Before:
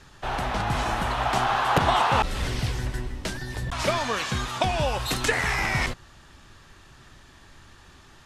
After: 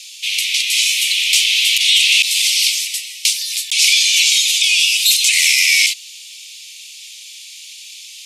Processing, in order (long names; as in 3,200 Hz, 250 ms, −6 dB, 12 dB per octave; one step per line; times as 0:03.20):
Butterworth high-pass 2,200 Hz 96 dB per octave
high-shelf EQ 2,800 Hz +11 dB
boost into a limiter +16.5 dB
level −1 dB